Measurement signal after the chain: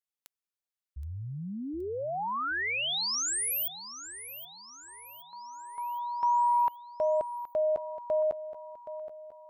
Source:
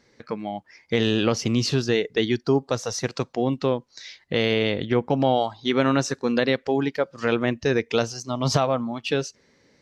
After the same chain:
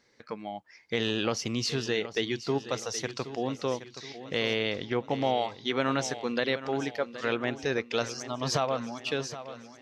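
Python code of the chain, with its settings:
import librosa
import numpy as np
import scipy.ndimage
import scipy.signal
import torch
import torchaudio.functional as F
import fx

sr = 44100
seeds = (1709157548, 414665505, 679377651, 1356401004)

y = fx.low_shelf(x, sr, hz=450.0, db=-7.0)
y = fx.echo_feedback(y, sr, ms=772, feedback_pct=48, wet_db=-13)
y = y * 10.0 ** (-4.0 / 20.0)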